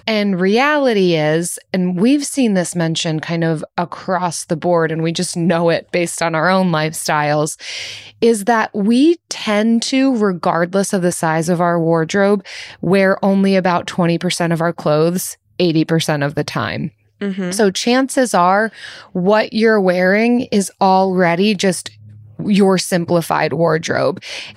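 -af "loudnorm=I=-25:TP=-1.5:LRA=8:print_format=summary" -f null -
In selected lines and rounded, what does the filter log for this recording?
Input Integrated:    -15.9 LUFS
Input True Peak:      -1.7 dBTP
Input LRA:             2.7 LU
Input Threshold:     -26.1 LUFS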